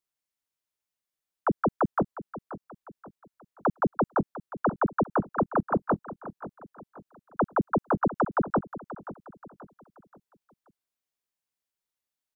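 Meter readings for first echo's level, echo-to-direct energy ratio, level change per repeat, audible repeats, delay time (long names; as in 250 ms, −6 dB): −14.5 dB, −14.0 dB, −8.0 dB, 3, 530 ms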